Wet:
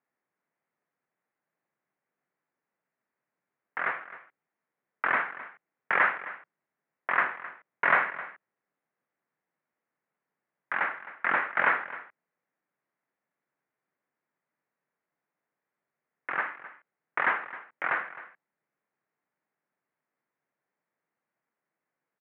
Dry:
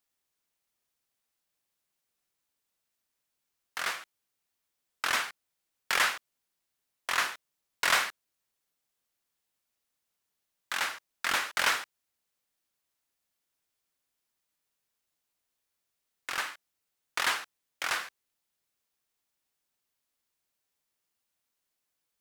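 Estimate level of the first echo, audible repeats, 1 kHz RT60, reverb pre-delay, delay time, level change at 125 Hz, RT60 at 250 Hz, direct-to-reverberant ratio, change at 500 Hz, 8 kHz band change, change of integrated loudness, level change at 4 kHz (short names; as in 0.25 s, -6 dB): -16.0 dB, 1, none, none, 0.262 s, n/a, none, none, +5.5 dB, under -40 dB, +2.0 dB, -17.5 dB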